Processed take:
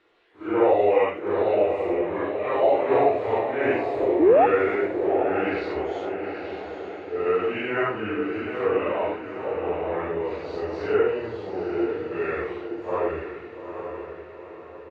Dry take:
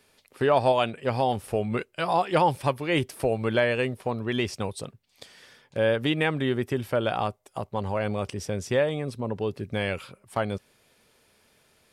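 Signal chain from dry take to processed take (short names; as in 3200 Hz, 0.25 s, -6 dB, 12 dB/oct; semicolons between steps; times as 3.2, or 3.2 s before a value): phase scrambler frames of 0.2 s; air absorption 200 m; painted sound rise, 3.35–3.57, 350–1100 Hz -19 dBFS; resonant low shelf 340 Hz -11.5 dB, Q 1.5; speakerphone echo 0.24 s, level -22 dB; varispeed -20%; diffused feedback echo 0.866 s, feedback 47%, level -7 dB; gain +2 dB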